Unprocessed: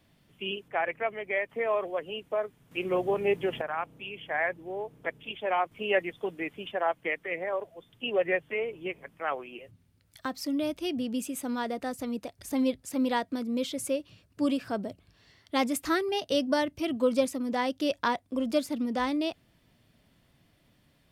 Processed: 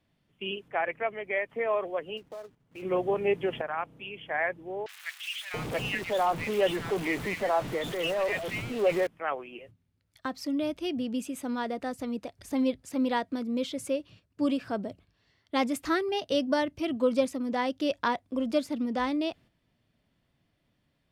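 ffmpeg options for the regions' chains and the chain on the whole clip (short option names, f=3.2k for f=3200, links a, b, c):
-filter_complex "[0:a]asettb=1/sr,asplit=3[a][b][c];[a]atrim=end=2.174[d];[b]atrim=start=2.17:end=2.82,asetpts=PTS-STARTPTS,afade=t=in:d=0.004:c=qsin,afade=t=out:st=0.646:d=0.004:c=qsin,highshelf=f=2.6k:g=-11.5,acompressor=threshold=-42dB:ratio=3:attack=3.2:release=140:knee=1:detection=peak,acrusher=bits=3:mode=log:mix=0:aa=0.000001[e];[c]atrim=start=2.816[f];[d][e]acrossfade=d=0.004:c1=hsin:c2=qsin[g];[g][f]acrossfade=d=0.004:c1=qsin:c2=hsin,asettb=1/sr,asplit=3[h][i][j];[h]atrim=end=4.864[k];[i]atrim=start=4.86:end=9.07,asetpts=PTS-STARTPTS,afade=t=in:d=0.004:c=qsin,afade=t=out:st=4.206:d=0.004:c=qsin,aeval=exprs='val(0)+0.5*0.0335*sgn(val(0))':c=same,acrossover=split=1600|5400[l][m][n];[n]adelay=30[o];[l]adelay=680[p];[p][m][o]amix=inputs=3:normalize=0,atrim=end_sample=185661[q];[j]atrim=start=9.066[r];[k][q]acrossfade=d=0.004:c1=hsin:c2=qsin[s];[s][r]acrossfade=d=0.004:c1=qsin:c2=hsin,agate=range=-8dB:threshold=-52dB:ratio=16:detection=peak,highshelf=f=7.9k:g=-10"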